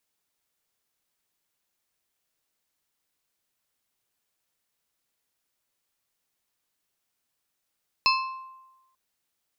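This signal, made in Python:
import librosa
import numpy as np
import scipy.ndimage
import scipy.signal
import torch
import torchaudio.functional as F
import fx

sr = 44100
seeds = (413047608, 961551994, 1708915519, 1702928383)

y = fx.strike_glass(sr, length_s=0.89, level_db=-20.0, body='plate', hz=1050.0, decay_s=1.1, tilt_db=0.5, modes=4)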